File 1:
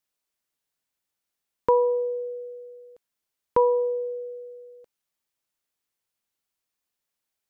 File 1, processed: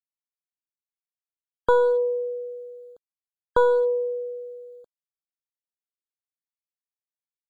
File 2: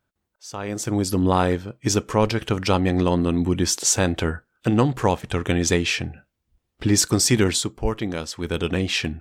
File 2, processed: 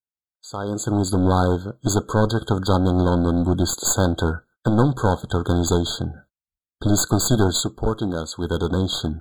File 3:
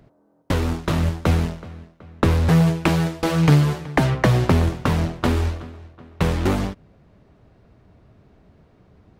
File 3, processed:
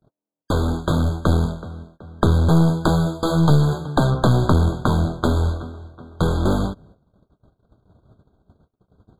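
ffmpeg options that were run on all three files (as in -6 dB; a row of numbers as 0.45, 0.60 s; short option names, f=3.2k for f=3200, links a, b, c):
-af "aeval=exprs='clip(val(0),-1,0.0794)':c=same,agate=range=-34dB:threshold=-50dB:ratio=16:detection=peak,afftfilt=real='re*eq(mod(floor(b*sr/1024/1600),2),0)':imag='im*eq(mod(floor(b*sr/1024/1600),2),0)':win_size=1024:overlap=0.75,volume=3.5dB"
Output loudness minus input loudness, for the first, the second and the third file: +1.5, +0.5, +0.5 LU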